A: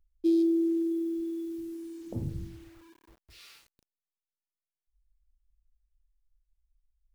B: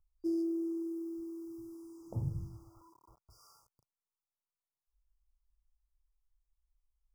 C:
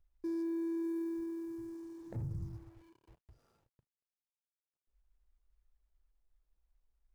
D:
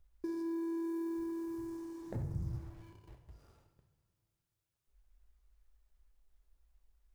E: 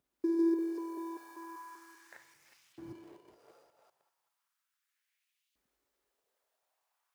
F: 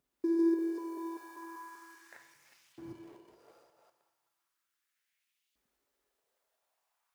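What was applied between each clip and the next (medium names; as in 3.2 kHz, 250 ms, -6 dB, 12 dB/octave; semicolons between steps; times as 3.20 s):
FFT band-reject 1.4–4.7 kHz; graphic EQ 125/250/1000/2000 Hz +9/-8/+10/-4 dB; trim -6 dB
median filter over 41 samples; peak limiter -36.5 dBFS, peak gain reduction 11 dB; trim +3.5 dB
compression 3:1, threshold -39 dBFS, peak gain reduction 3.5 dB; on a send at -4.5 dB: reverberation, pre-delay 3 ms; on the sum: trim +4.5 dB
chunks repeated in reverse 195 ms, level -0.5 dB; LFO high-pass saw up 0.36 Hz 240–3100 Hz
two-slope reverb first 0.89 s, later 3.2 s, from -27 dB, DRR 8.5 dB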